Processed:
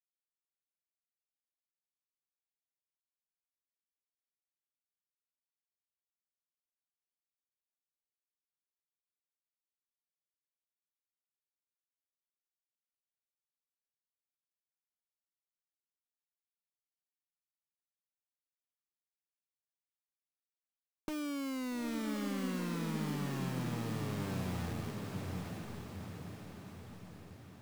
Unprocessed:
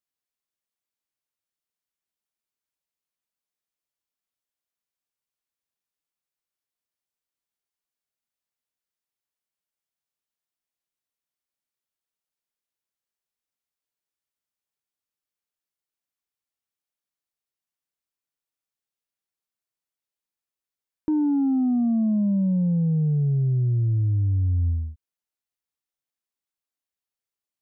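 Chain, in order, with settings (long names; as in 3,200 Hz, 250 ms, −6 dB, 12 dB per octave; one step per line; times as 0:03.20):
one-sided soft clipper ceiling −34.5 dBFS
parametric band 94 Hz −12.5 dB 0.6 octaves
downward compressor 4 to 1, threshold −42 dBFS, peak gain reduction 14.5 dB
bit reduction 7 bits
on a send: feedback delay with all-pass diffusion 865 ms, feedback 56%, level −3 dB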